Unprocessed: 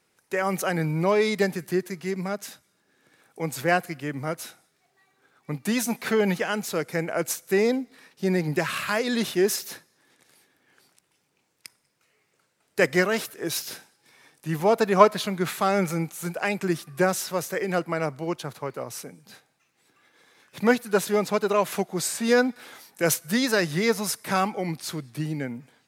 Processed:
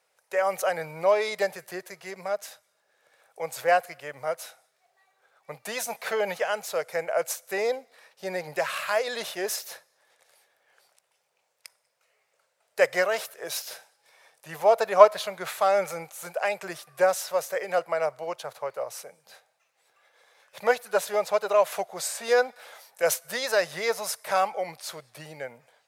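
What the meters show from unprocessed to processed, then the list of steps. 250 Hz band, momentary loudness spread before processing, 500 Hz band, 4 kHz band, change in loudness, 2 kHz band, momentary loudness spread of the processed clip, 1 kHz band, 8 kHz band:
-18.0 dB, 12 LU, 0.0 dB, -3.0 dB, -1.5 dB, -2.5 dB, 16 LU, +0.5 dB, -3.0 dB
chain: resonant low shelf 400 Hz -12.5 dB, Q 3; trim -3 dB

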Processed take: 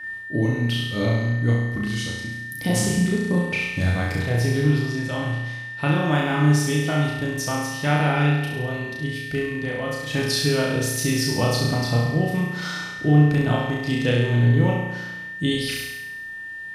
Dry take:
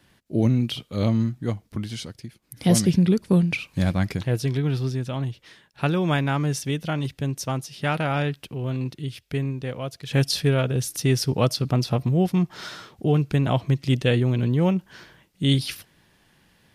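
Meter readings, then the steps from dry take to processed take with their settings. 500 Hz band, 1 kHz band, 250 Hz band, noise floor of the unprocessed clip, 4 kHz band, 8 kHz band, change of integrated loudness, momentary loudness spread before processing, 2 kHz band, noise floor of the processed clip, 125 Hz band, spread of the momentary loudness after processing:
+1.5 dB, +3.0 dB, +0.5 dB, -62 dBFS, +2.5 dB, +3.0 dB, +1.5 dB, 11 LU, +8.5 dB, -35 dBFS, +1.5 dB, 10 LU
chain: compression 2:1, threshold -23 dBFS, peak gain reduction 6.5 dB; whistle 1.8 kHz -36 dBFS; on a send: flutter echo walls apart 5.8 m, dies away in 1 s; on the sum: FDN reverb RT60 0.56 s, low-frequency decay 1.1×, high-frequency decay 0.95×, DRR 6 dB

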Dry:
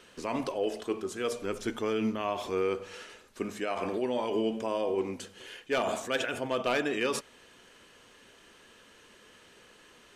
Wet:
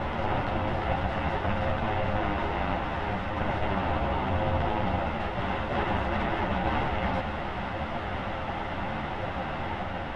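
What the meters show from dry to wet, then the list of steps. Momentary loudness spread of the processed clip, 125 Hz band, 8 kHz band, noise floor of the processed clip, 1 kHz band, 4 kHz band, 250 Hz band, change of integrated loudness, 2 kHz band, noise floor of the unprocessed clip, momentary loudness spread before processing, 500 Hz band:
5 LU, +17.0 dB, under -15 dB, -34 dBFS, +9.0 dB, +0.5 dB, +2.5 dB, +2.0 dB, +5.0 dB, -58 dBFS, 9 LU, -0.5 dB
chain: spectral levelling over time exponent 0.2; reverse echo 335 ms -3.5 dB; ring modulator 310 Hz; distance through air 350 m; three-phase chorus

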